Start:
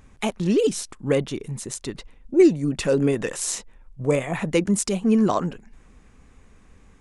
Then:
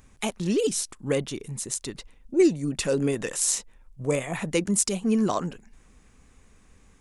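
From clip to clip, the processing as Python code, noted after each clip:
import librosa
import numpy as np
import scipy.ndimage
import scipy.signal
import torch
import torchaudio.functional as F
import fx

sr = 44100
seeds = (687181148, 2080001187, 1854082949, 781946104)

y = fx.high_shelf(x, sr, hz=4200.0, db=9.5)
y = F.gain(torch.from_numpy(y), -4.5).numpy()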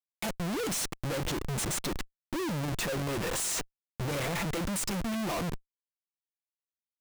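y = x + 0.56 * np.pad(x, (int(5.9 * sr / 1000.0), 0))[:len(x)]
y = fx.schmitt(y, sr, flips_db=-36.5)
y = F.gain(torch.from_numpy(y), -5.5).numpy()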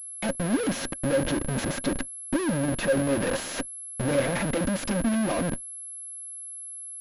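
y = fx.block_float(x, sr, bits=3)
y = fx.small_body(y, sr, hz=(260.0, 550.0, 1600.0), ring_ms=45, db=12)
y = fx.pwm(y, sr, carrier_hz=11000.0)
y = F.gain(torch.from_numpy(y), 2.0).numpy()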